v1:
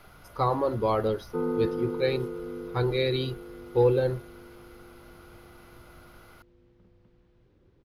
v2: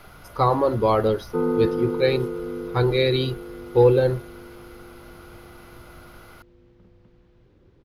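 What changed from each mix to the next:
speech +6.0 dB; background +6.0 dB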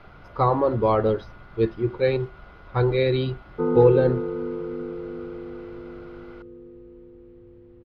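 background: entry +2.25 s; master: add distance through air 270 m

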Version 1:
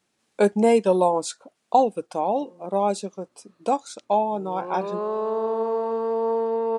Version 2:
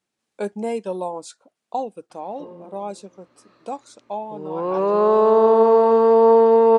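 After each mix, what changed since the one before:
speech -8.0 dB; background +11.0 dB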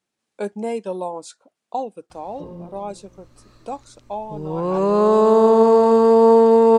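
background: remove band-pass 300–3100 Hz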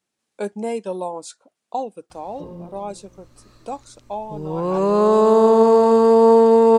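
master: add treble shelf 6.1 kHz +4.5 dB

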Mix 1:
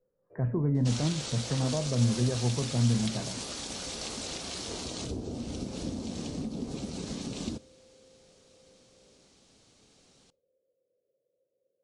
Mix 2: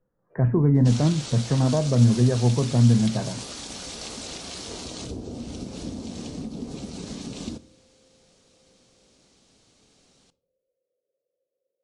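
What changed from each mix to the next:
speech +8.5 dB; first sound: add tilt EQ +3.5 dB/octave; second sound: send +9.0 dB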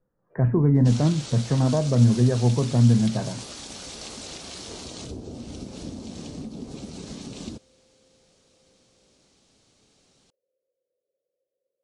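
reverb: off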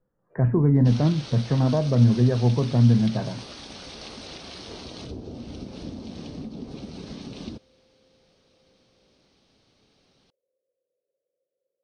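master: add Savitzky-Golay filter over 15 samples

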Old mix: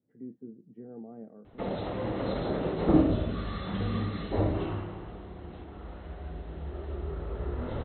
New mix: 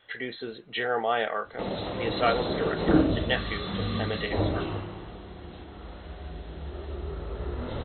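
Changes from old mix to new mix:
speech: remove Butterworth band-pass 200 Hz, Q 1.4; master: remove distance through air 350 m

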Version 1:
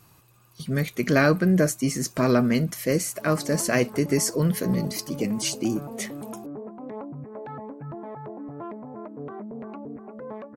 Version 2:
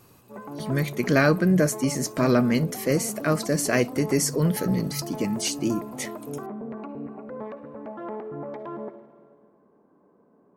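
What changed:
background: entry -2.90 s; reverb: on, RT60 1.7 s

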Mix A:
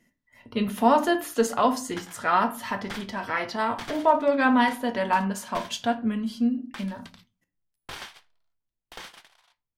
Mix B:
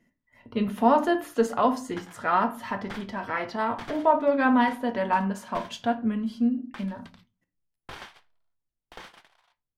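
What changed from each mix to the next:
master: add treble shelf 3 kHz -10.5 dB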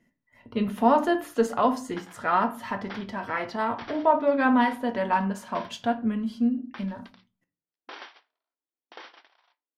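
background: add brick-wall FIR band-pass 240–5900 Hz

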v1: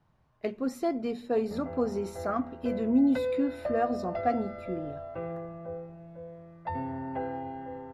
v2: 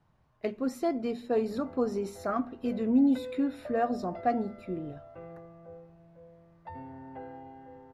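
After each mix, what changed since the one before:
background -9.5 dB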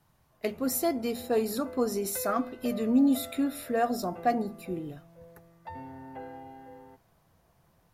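background: entry -1.00 s; master: remove tape spacing loss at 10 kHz 21 dB

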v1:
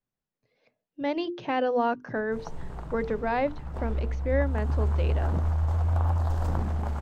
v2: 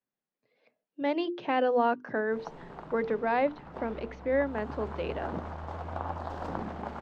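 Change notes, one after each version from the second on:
master: add three-band isolator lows -21 dB, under 170 Hz, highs -19 dB, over 5 kHz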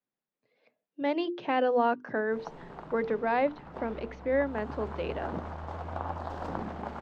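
no change

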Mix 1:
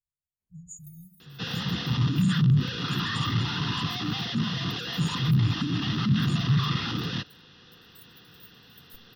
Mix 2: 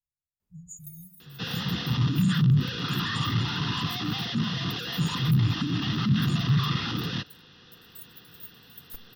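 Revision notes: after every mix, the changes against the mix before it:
first sound +8.0 dB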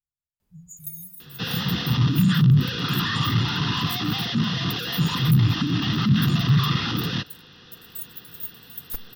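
first sound +10.5 dB; second sound +4.5 dB

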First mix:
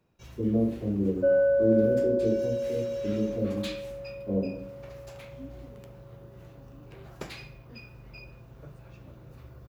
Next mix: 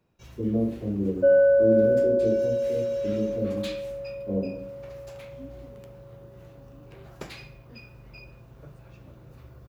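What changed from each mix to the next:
second sound +4.5 dB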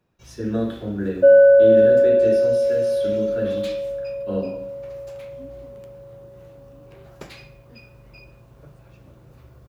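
speech: remove Gaussian low-pass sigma 13 samples; second sound +7.0 dB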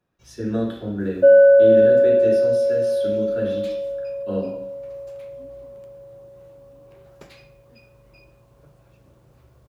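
first sound -6.5 dB

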